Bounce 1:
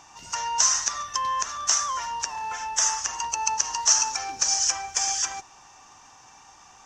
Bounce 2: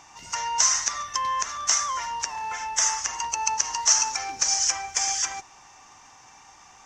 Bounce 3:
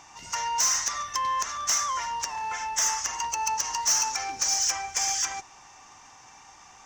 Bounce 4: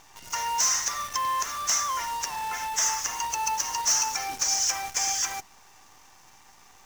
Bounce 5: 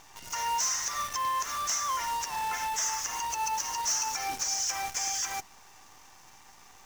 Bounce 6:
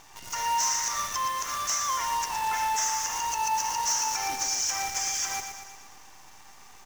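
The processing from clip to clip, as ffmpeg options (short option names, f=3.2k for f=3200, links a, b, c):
-af "equalizer=f=2.1k:w=7.8:g=8.5"
-af "asoftclip=type=tanh:threshold=-17.5dB"
-af "acrusher=bits=7:dc=4:mix=0:aa=0.000001"
-af "alimiter=limit=-23.5dB:level=0:latency=1:release=109"
-af "aecho=1:1:117|234|351|468|585|702|819:0.422|0.245|0.142|0.0823|0.0477|0.0277|0.0161,volume=1.5dB"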